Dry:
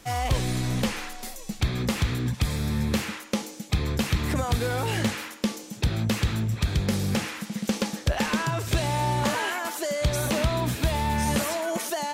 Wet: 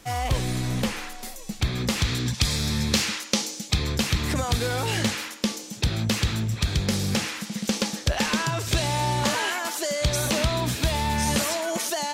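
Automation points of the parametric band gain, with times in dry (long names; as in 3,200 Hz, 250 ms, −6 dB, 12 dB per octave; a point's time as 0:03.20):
parametric band 5,200 Hz 1.9 octaves
0:01.41 +0.5 dB
0:01.99 +7 dB
0:02.20 +13 dB
0:03.43 +13 dB
0:04.08 +6.5 dB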